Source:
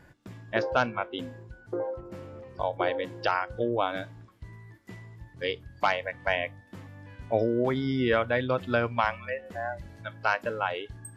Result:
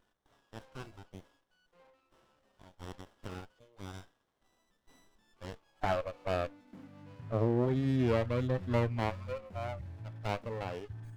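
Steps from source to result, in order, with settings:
high-pass filter sweep 2,700 Hz → 84 Hz, 0:04.77–0:07.58
harmonic and percussive parts rebalanced percussive −12 dB
windowed peak hold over 17 samples
level −3.5 dB

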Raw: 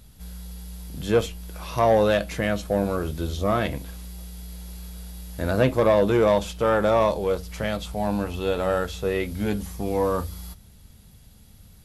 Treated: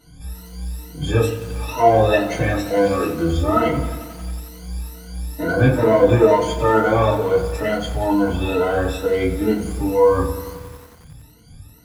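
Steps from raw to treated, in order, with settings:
rippled gain that drifts along the octave scale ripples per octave 1.9, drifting +2.2 Hz, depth 23 dB
0:02.65–0:03.06: meter weighting curve D
in parallel at −2 dB: brickwall limiter −11.5 dBFS, peak gain reduction 11 dB
on the sum: feedback delay network reverb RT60 0.41 s, low-frequency decay 1.25×, high-frequency decay 0.5×, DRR −9 dB
feedback echo at a low word length 90 ms, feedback 80%, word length 4 bits, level −14 dB
level −14 dB

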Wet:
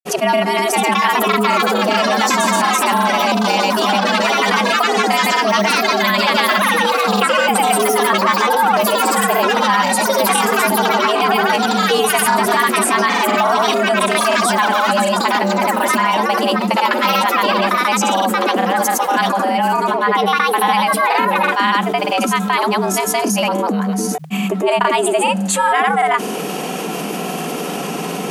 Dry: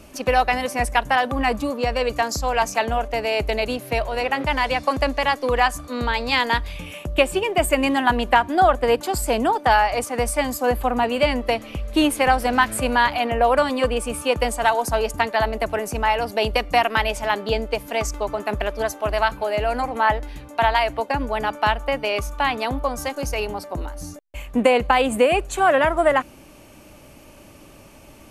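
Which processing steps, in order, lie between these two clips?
dynamic equaliser 9,100 Hz, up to +6 dB, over −45 dBFS, Q 1.1
delay with pitch and tempo change per echo 632 ms, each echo +4 semitones, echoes 3
frequency shifter +150 Hz
granular cloud, pitch spread up and down by 0 semitones
envelope flattener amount 70%
level −1 dB

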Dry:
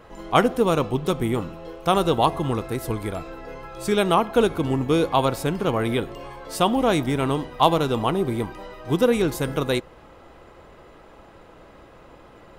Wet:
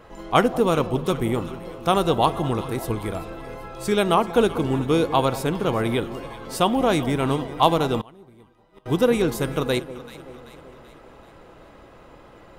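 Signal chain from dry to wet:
delay that swaps between a low-pass and a high-pass 192 ms, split 910 Hz, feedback 72%, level −13.5 dB
0:08.01–0:08.86: gate with flip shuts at −27 dBFS, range −25 dB

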